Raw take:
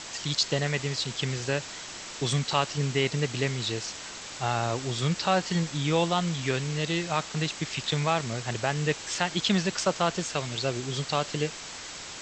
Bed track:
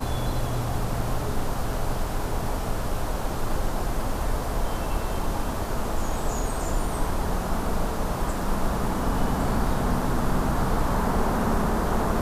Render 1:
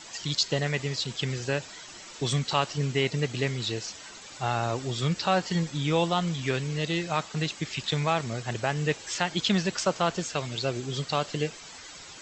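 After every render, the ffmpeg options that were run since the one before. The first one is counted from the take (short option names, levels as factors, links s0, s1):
-af "afftdn=nr=10:nf=-41"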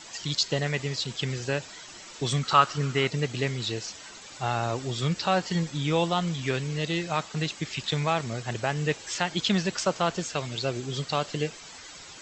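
-filter_complex "[0:a]asettb=1/sr,asplit=3[s0][s1][s2];[s0]atrim=end=2.434[s3];[s1]atrim=start=2.43:end=3.08,asetpts=PTS-STARTPTS,afade=t=in:d=0.004:c=qsin,afade=t=out:st=0.646:d=0.004:c=qsin,equalizer=f=1300:w=3.1:g=14[s4];[s2]atrim=start=3.076[s5];[s3][s4]acrossfade=d=0.004:c1=hsin:c2=qsin[s6];[s6][s5]acrossfade=d=0.004:c1=qsin:c2=hsin"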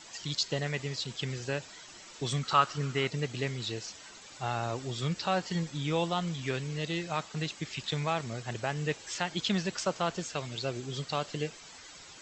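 -af "volume=0.562"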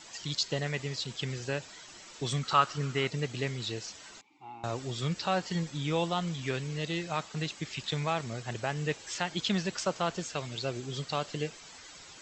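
-filter_complex "[0:a]asettb=1/sr,asplit=3[s0][s1][s2];[s0]atrim=end=4.214[s3];[s1]atrim=start=4.21:end=4.64,asetpts=PTS-STARTPTS,afade=t=in:d=0.004:c=qsin,afade=t=out:st=0.426:d=0.004:c=qsin,asplit=3[s4][s5][s6];[s4]bandpass=f=300:t=q:w=8,volume=1[s7];[s5]bandpass=f=870:t=q:w=8,volume=0.501[s8];[s6]bandpass=f=2240:t=q:w=8,volume=0.355[s9];[s7][s8][s9]amix=inputs=3:normalize=0[s10];[s2]atrim=start=4.636[s11];[s3][s10]acrossfade=d=0.004:c1=hsin:c2=qsin[s12];[s12][s11]acrossfade=d=0.004:c1=qsin:c2=hsin"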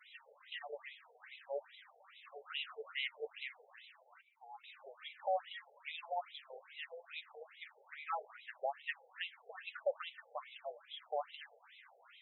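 -af "flanger=delay=3.3:depth=7.8:regen=-29:speed=0.2:shape=sinusoidal,afftfilt=real='re*between(b*sr/1024,580*pow(2900/580,0.5+0.5*sin(2*PI*2.4*pts/sr))/1.41,580*pow(2900/580,0.5+0.5*sin(2*PI*2.4*pts/sr))*1.41)':imag='im*between(b*sr/1024,580*pow(2900/580,0.5+0.5*sin(2*PI*2.4*pts/sr))/1.41,580*pow(2900/580,0.5+0.5*sin(2*PI*2.4*pts/sr))*1.41)':win_size=1024:overlap=0.75"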